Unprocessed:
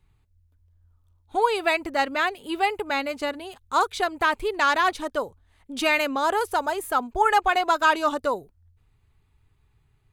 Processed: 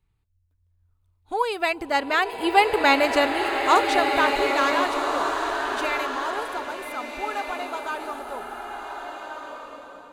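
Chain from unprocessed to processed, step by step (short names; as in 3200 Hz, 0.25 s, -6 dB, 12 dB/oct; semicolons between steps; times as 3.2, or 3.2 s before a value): Doppler pass-by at 3, 8 m/s, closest 3.9 m; bloom reverb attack 1.54 s, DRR 2 dB; gain +8 dB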